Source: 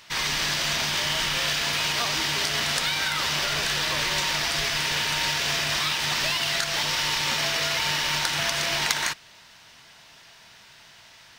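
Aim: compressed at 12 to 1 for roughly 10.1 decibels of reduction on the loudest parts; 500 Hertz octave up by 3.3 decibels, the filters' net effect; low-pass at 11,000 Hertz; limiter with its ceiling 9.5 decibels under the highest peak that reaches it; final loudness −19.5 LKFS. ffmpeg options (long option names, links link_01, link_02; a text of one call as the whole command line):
ffmpeg -i in.wav -af "lowpass=11000,equalizer=frequency=500:width_type=o:gain=4.5,acompressor=threshold=-30dB:ratio=12,volume=16.5dB,alimiter=limit=-12dB:level=0:latency=1" out.wav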